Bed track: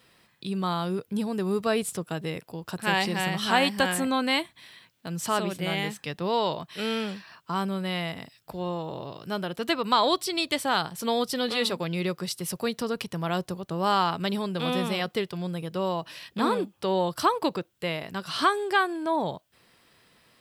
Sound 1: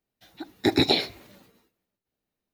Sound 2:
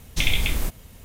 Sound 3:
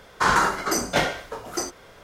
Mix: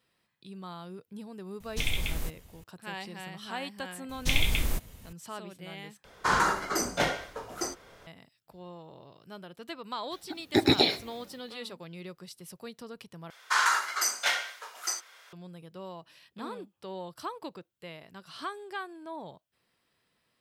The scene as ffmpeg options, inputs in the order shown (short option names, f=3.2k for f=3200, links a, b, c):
-filter_complex "[2:a]asplit=2[a][b];[3:a]asplit=2[c][d];[0:a]volume=-14.5dB[e];[d]highpass=1.4k[f];[e]asplit=3[g][h][i];[g]atrim=end=6.044[j];[c]atrim=end=2.03,asetpts=PTS-STARTPTS,volume=-5.5dB[k];[h]atrim=start=8.066:end=13.304[l];[f]atrim=end=2.03,asetpts=PTS-STARTPTS,volume=-1dB[m];[i]atrim=start=15.326[n];[a]atrim=end=1.04,asetpts=PTS-STARTPTS,volume=-8.5dB,afade=t=in:d=0.004:c=hsin,afade=t=out:st=1.036:d=0.004:c=hsin,adelay=1600[o];[b]atrim=end=1.04,asetpts=PTS-STARTPTS,volume=-4dB,afade=t=in:d=0.004:c=hsin,afade=t=out:st=1.036:d=0.004:c=hsin,adelay=180369S[p];[1:a]atrim=end=2.53,asetpts=PTS-STARTPTS,volume=-1.5dB,afade=t=in:d=0.004:c=hsin,afade=t=out:st=2.526:d=0.004:c=hsin,adelay=9900[q];[j][k]acrossfade=d=0.004:c1=hsin:c2=hsin[r];[r][l]acrossfade=d=0.004:c1=hsin:c2=hsin[s];[s][m]acrossfade=d=0.004:c1=hsin:c2=hsin[t];[t][n]acrossfade=d=0.004:c1=hsin:c2=hsin[u];[u][o][p][q]amix=inputs=4:normalize=0"